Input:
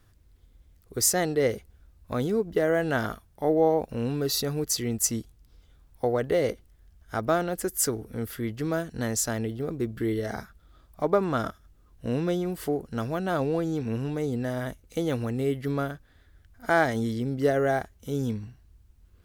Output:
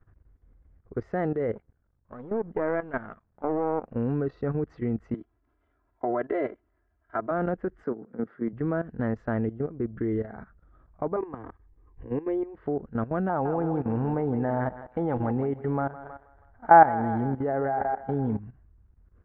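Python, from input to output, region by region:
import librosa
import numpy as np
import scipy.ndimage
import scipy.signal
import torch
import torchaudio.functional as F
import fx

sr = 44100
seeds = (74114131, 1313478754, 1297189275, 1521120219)

y = fx.chain(x, sr, fx.halfwave_gain(db=-12.0),
    fx.low_shelf(hz=68.0, db=-11.0), at=(1.55, 3.94))
y = fx.chain(y, sr, fx.highpass(hz=440.0, slope=6),
    fx.comb(ms=3.0, depth=0.94), at=(5.14, 7.31))
y = fx.chain(y, sr, fx.highpass(hz=170.0, slope=24),
    fx.peak_eq(hz=2700.0, db=-7.5, octaves=0.87), at=(7.84, 8.53))
y = fx.chain(y, sr, fx.fixed_phaser(hz=920.0, stages=8),
    fx.pre_swell(db_per_s=120.0), at=(11.16, 12.56))
y = fx.chain(y, sr, fx.peak_eq(hz=840.0, db=15.0, octaves=0.35),
    fx.echo_thinned(ms=160, feedback_pct=42, hz=310.0, wet_db=-9), at=(13.29, 18.39))
y = scipy.signal.sosfilt(scipy.signal.butter(4, 1700.0, 'lowpass', fs=sr, output='sos'), y)
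y = fx.dynamic_eq(y, sr, hz=200.0, q=2.5, threshold_db=-46.0, ratio=4.0, max_db=3)
y = fx.level_steps(y, sr, step_db=15)
y = y * librosa.db_to_amplitude(3.5)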